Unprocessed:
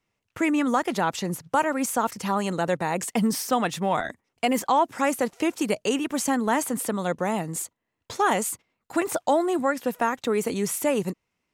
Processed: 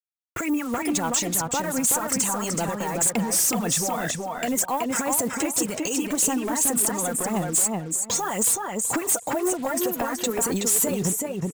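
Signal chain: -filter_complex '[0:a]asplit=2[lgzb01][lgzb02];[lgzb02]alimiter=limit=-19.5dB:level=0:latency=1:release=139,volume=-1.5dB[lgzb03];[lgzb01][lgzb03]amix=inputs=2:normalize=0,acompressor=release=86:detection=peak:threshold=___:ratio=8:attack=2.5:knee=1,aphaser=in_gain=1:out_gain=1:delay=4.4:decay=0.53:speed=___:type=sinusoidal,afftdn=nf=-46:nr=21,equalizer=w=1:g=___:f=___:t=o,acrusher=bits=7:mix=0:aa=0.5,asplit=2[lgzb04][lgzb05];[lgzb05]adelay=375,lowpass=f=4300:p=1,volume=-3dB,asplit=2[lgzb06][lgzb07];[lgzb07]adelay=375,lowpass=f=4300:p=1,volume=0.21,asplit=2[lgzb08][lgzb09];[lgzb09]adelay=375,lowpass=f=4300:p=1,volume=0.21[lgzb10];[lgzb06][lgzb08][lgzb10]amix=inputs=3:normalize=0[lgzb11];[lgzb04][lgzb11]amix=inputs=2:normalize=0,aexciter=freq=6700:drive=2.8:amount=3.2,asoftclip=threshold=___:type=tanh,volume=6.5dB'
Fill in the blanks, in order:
-32dB, 1.9, 8, 7100, -23dB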